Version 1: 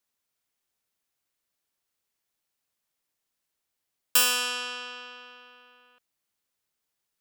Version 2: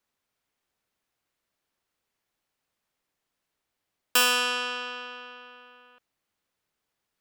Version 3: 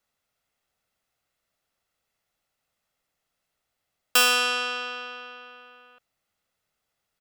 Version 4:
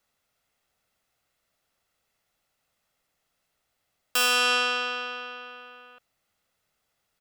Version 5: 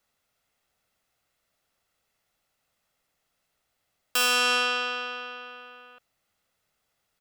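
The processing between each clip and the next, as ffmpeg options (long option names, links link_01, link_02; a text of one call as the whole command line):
ffmpeg -i in.wav -af "highshelf=frequency=4200:gain=-11,volume=6dB" out.wav
ffmpeg -i in.wav -af "aecho=1:1:1.5:0.37,volume=1.5dB" out.wav
ffmpeg -i in.wav -af "alimiter=limit=-17.5dB:level=0:latency=1,volume=3.5dB" out.wav
ffmpeg -i in.wav -af "volume=17.5dB,asoftclip=hard,volume=-17.5dB" out.wav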